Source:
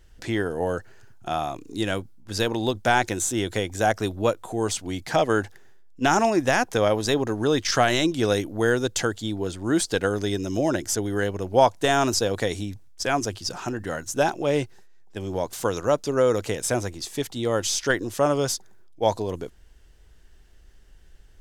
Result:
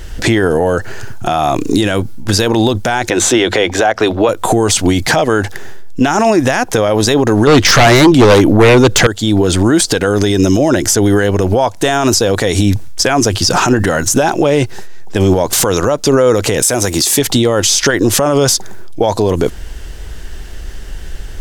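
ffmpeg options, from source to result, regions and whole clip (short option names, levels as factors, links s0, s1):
-filter_complex "[0:a]asettb=1/sr,asplit=3[s0][s1][s2];[s0]atrim=end=3.104[s3];[s1]atrim=start=3.1:end=4.29,asetpts=PTS-STARTPTS,afade=t=in:d=0.004:c=qsin,afade=t=out:st=1.186:d=0.004:c=qsin,acrossover=split=340 4600:gain=0.224 1 0.126[s4][s5][s6];[s4][s5][s6]amix=inputs=3:normalize=0,bandreject=f=50:t=h:w=6,bandreject=f=100:t=h:w=6,bandreject=f=150:t=h:w=6,bandreject=f=200:t=h:w=6,bandreject=f=250:t=h:w=6[s7];[s2]atrim=start=4.286[s8];[s3][s7]acrossfade=d=0.004:c1=hsin:c2=qsin[s9];[s9][s8]acrossfade=d=0.004:c1=qsin:c2=hsin,asettb=1/sr,asplit=3[s10][s11][s12];[s10]atrim=end=7.474[s13];[s11]atrim=start=7.47:end=9.07,asetpts=PTS-STARTPTS,afade=t=in:d=0.004:c=qsin,afade=t=out:st=1.596:d=0.004:c=qsin,aeval=exprs='0.562*sin(PI/2*5.01*val(0)/0.562)':c=same,highshelf=f=4000:g=-9[s14];[s12]atrim=start=9.066[s15];[s13][s14]acrossfade=d=0.004:c1=hsin:c2=qsin[s16];[s16][s15]acrossfade=d=0.004:c1=qsin:c2=hsin,asettb=1/sr,asplit=3[s17][s18][s19];[s17]atrim=end=16.624[s20];[s18]atrim=start=16.62:end=17.19,asetpts=PTS-STARTPTS,afade=t=in:d=0.004:c=qsin,afade=t=out:st=0.566:d=0.004:c=qsin,highpass=f=120:p=1,aemphasis=mode=production:type=cd[s21];[s19]atrim=start=17.186[s22];[s20][s21]acrossfade=d=0.004:c1=hsin:c2=qsin[s23];[s23][s22]acrossfade=d=0.004:c1=qsin:c2=hsin,acompressor=threshold=0.0398:ratio=6,alimiter=level_in=23.7:limit=0.891:release=50:level=0:latency=1,volume=0.891"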